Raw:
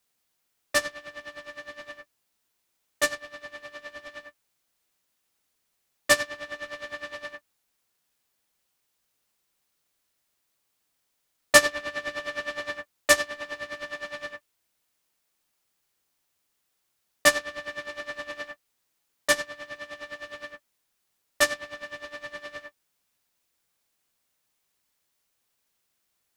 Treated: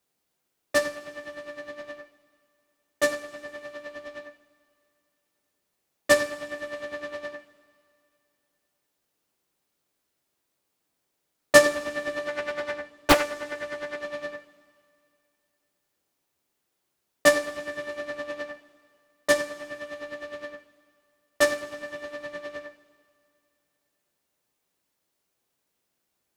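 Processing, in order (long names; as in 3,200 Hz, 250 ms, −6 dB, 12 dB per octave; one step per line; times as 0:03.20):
parametric band 320 Hz +9 dB 2.9 octaves
coupled-rooms reverb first 0.49 s, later 2.6 s, from −16 dB, DRR 7 dB
0:12.28–0:14.03: highs frequency-modulated by the lows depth 0.84 ms
level −4 dB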